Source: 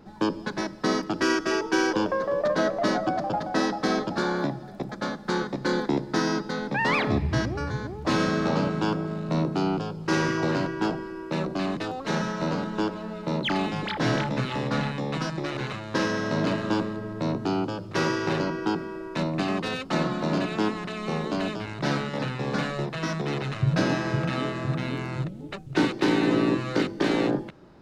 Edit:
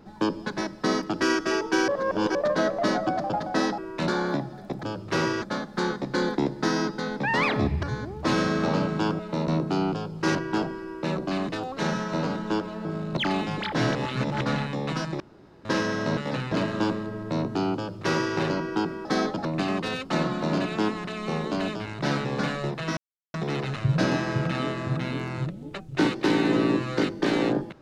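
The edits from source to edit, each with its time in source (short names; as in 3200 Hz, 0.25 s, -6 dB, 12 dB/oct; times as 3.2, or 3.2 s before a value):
1.88–2.35 reverse
3.78–4.18 swap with 18.95–19.25
7.34–7.65 cut
9.01–9.33 swap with 13.13–13.42
10.2–10.63 cut
14.2–14.66 reverse
15.45–15.9 room tone
17.66–18.25 copy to 4.93
22.05–22.4 move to 16.42
23.12 insert silence 0.37 s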